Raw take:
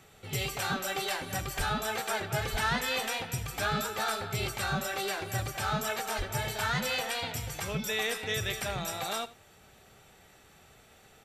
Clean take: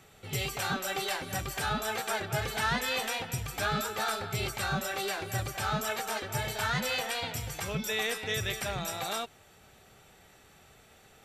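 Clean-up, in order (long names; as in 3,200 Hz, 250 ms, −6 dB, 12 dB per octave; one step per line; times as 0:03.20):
0:01.57–0:01.69: high-pass filter 140 Hz 24 dB per octave
0:02.51–0:02.63: high-pass filter 140 Hz 24 dB per octave
0:06.17–0:06.29: high-pass filter 140 Hz 24 dB per octave
echo removal 81 ms −17.5 dB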